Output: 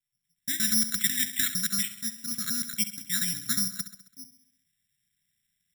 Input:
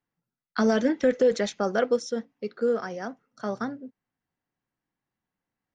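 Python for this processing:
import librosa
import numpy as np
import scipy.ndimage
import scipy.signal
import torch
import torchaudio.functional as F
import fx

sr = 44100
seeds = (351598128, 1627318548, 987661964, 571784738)

p1 = fx.block_reorder(x, sr, ms=119.0, group=4)
p2 = scipy.signal.sosfilt(scipy.signal.ellip(3, 1.0, 70, [180.0, 1900.0], 'bandstop', fs=sr, output='sos'), p1)
p3 = fx.rider(p2, sr, range_db=10, speed_s=0.5)
p4 = p2 + F.gain(torch.from_numpy(p3), 3.0).numpy()
p5 = fx.peak_eq(p4, sr, hz=4400.0, db=9.5, octaves=2.4)
p6 = p5 + fx.echo_feedback(p5, sr, ms=67, feedback_pct=58, wet_db=-12.5, dry=0)
p7 = (np.kron(scipy.signal.resample_poly(p6, 1, 8), np.eye(8)[0]) * 8)[:len(p6)]
y = F.gain(torch.from_numpy(p7), -6.5).numpy()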